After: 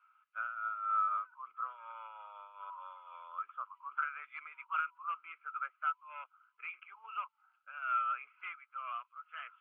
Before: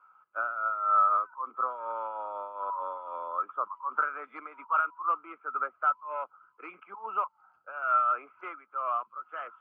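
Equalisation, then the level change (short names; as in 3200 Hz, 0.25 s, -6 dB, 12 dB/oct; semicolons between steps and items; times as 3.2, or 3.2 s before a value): resonant high-pass 2600 Hz, resonance Q 2.1; air absorption 310 m; +3.5 dB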